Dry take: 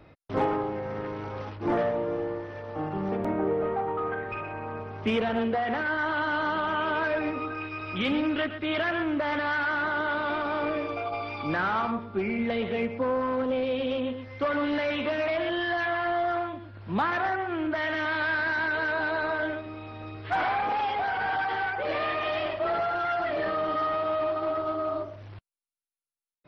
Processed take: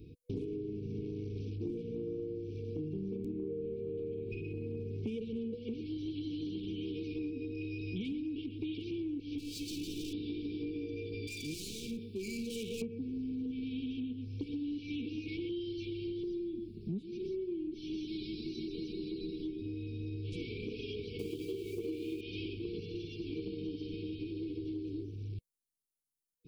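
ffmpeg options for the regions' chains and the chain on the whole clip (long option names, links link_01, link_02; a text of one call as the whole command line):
ffmpeg -i in.wav -filter_complex "[0:a]asettb=1/sr,asplit=3[link_01][link_02][link_03];[link_01]atrim=end=9.384[link_04];[link_02]atrim=start=9.38:end=10.13,asetpts=PTS-STARTPTS,afade=type=in:duration=0.004:curve=qsin,afade=type=out:start_time=0.746:duration=0.004:curve=qsin,bandreject=frequency=60:width_type=h:width=6,bandreject=frequency=120:width_type=h:width=6,bandreject=frequency=180:width_type=h:width=6,bandreject=frequency=240:width_type=h:width=6,bandreject=frequency=300:width_type=h:width=6,bandreject=frequency=360:width_type=h:width=6,bandreject=frequency=420:width_type=h:width=6,bandreject=frequency=480:width_type=h:width=6,bandreject=frequency=540:width_type=h:width=6,bandreject=frequency=600:width_type=h:width=6,aecho=1:1:6.6:0.43,atrim=end_sample=33075,asoftclip=type=hard:threshold=-28dB[link_05];[link_03]atrim=start=10.126[link_06];[link_04][link_05]acrossfade=duration=0.004:curve1=hsin:curve2=qsin[link_07];[link_07][link_06]acrossfade=duration=0.004:curve1=qsin:curve2=hsin,asettb=1/sr,asplit=3[link_08][link_09][link_10];[link_08]atrim=end=11.274[link_11];[link_09]atrim=start=11.27:end=12.82,asetpts=PTS-STARTPTS,afade=type=in:duration=0.004:curve=qsin,afade=type=out:start_time=1.546:duration=0.004:curve=qsin,tiltshelf=frequency=1200:gain=-8.5,volume=32.5dB,asoftclip=hard,volume=-32.5dB[link_12];[link_10]atrim=start=12.816[link_13];[link_11][link_12]acrossfade=duration=0.004:curve1=hsin:curve2=qsin[link_14];[link_14][link_13]acrossfade=duration=0.004:curve1=qsin:curve2=hsin,asettb=1/sr,asplit=3[link_15][link_16][link_17];[link_15]atrim=end=16.234[link_18];[link_16]atrim=start=16.23:end=19.62,asetpts=PTS-STARTPTS,afade=type=in:duration=0.004:curve=qsin,afade=type=out:start_time=3.386:duration=0.004:curve=qsin,equalizer=frequency=2400:width_type=o:width=1.3:gain=-7.5,aecho=1:1:5.3:0.88,atrim=end_sample=149499[link_19];[link_17]atrim=start=19.616[link_20];[link_18][link_19]acrossfade=duration=0.004:curve1=hsin:curve2=qsin[link_21];[link_21][link_20]acrossfade=duration=0.004:curve1=qsin:curve2=hsin,asettb=1/sr,asplit=3[link_22][link_23][link_24];[link_22]atrim=end=21.194[link_25];[link_23]atrim=start=21.19:end=22.21,asetpts=PTS-STARTPTS,afade=type=in:duration=0.004:curve=qsin,afade=type=out:start_time=1.016:duration=0.004:curve=qsin,aeval=exprs='val(0)+0.5*0.00631*sgn(val(0))':channel_layout=same,equalizer=frequency=340:width_type=o:width=0.68:gain=12.5[link_26];[link_24]atrim=start=22.206[link_27];[link_25][link_26]acrossfade=duration=0.004:curve1=hsin:curve2=qsin[link_28];[link_28][link_27]acrossfade=duration=0.004:curve1=qsin:curve2=hsin,afftfilt=real='re*(1-between(b*sr/4096,490,2200))':imag='im*(1-between(b*sr/4096,490,2200))':win_size=4096:overlap=0.75,equalizer=frequency=1900:width=0.56:gain=-14.5,acompressor=threshold=-40dB:ratio=10,volume=4.5dB" out.wav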